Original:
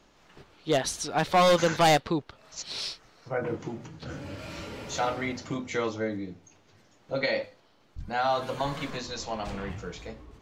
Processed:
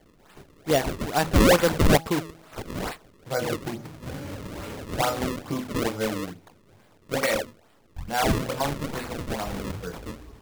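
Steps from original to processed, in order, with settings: de-hum 162.9 Hz, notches 5; decimation with a swept rate 33×, swing 160% 2.3 Hz; gain +3.5 dB

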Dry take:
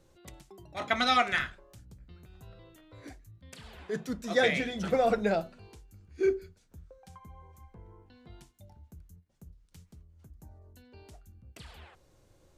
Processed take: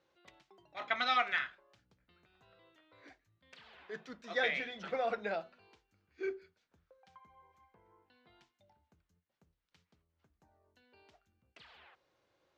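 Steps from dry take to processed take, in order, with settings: HPF 1400 Hz 6 dB/oct; air absorption 230 m

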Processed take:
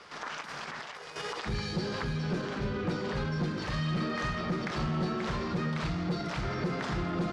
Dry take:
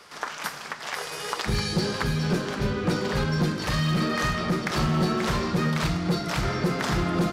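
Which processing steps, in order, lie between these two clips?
limiter -25.5 dBFS, peak gain reduction 11.5 dB; 0.41–1.16 negative-ratio compressor -40 dBFS, ratio -0.5; air absorption 92 m

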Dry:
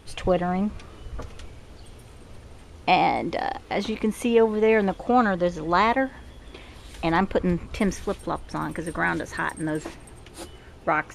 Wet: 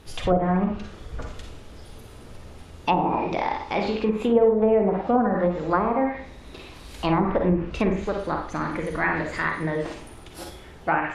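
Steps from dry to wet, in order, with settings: formant shift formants +2 st; Schroeder reverb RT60 0.47 s, DRR 2 dB; treble ducked by the level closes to 690 Hz, closed at -14.5 dBFS

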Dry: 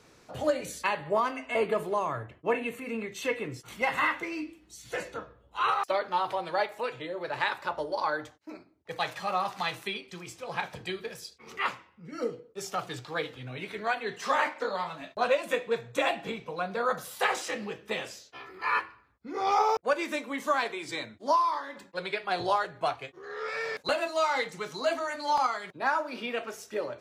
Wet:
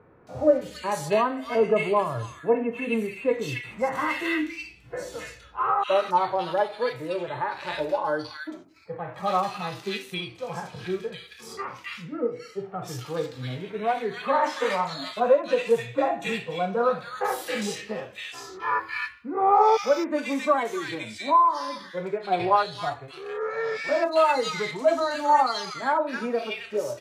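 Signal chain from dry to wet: 14.43–14.93 high shelf 2800 Hz +10.5 dB; harmonic-percussive split percussive -17 dB; bands offset in time lows, highs 0.27 s, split 1700 Hz; gain +8.5 dB

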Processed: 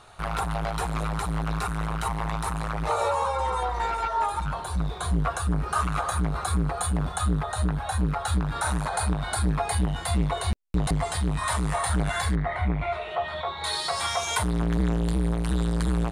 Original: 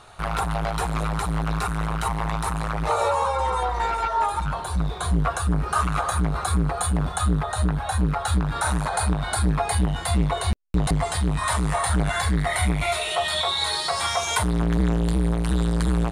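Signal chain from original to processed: 12.35–13.64 LPF 1700 Hz 12 dB/oct; gain -3 dB

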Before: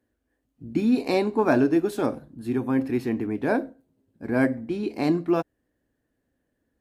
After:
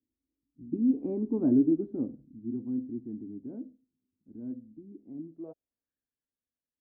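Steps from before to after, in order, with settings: Doppler pass-by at 1.45, 16 m/s, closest 8.3 m; low-pass sweep 280 Hz -> 5900 Hz, 5.24–6.42; gain -7.5 dB

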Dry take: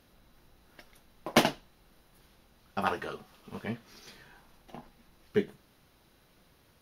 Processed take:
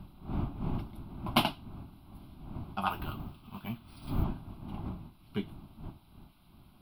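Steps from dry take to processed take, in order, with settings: wind noise 300 Hz -38 dBFS; 2.9–4.24 careless resampling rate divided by 3×, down filtered, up hold; fixed phaser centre 1800 Hz, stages 6

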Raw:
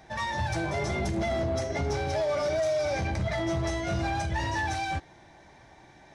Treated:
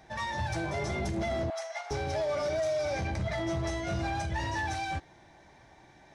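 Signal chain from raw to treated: 1.5–1.91 elliptic high-pass 680 Hz, stop band 50 dB; gain -3 dB

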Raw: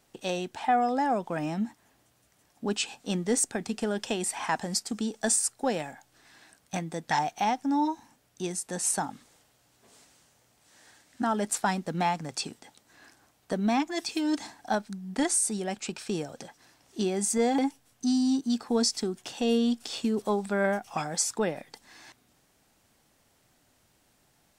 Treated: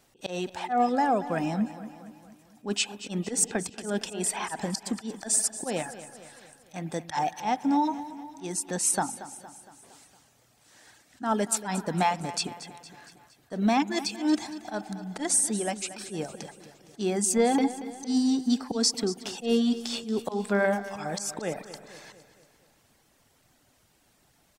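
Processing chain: spring tank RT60 1.8 s, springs 49 ms, chirp 70 ms, DRR 12.5 dB; auto swell 0.131 s; reverb removal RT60 0.64 s; feedback echo 0.231 s, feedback 54%, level -14.5 dB; gain +3 dB

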